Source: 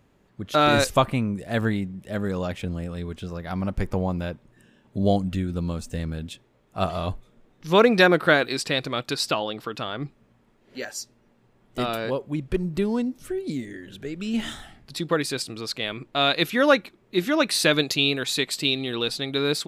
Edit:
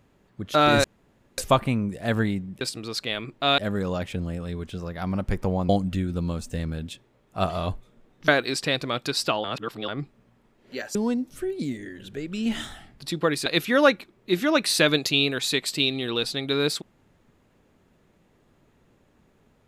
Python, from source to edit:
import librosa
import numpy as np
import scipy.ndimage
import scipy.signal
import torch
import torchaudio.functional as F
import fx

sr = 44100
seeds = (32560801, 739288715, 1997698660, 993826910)

y = fx.edit(x, sr, fx.insert_room_tone(at_s=0.84, length_s=0.54),
    fx.cut(start_s=4.18, length_s=0.91),
    fx.cut(start_s=7.68, length_s=0.63),
    fx.reverse_span(start_s=9.47, length_s=0.44),
    fx.cut(start_s=10.98, length_s=1.85),
    fx.move(start_s=15.34, length_s=0.97, to_s=2.07), tone=tone)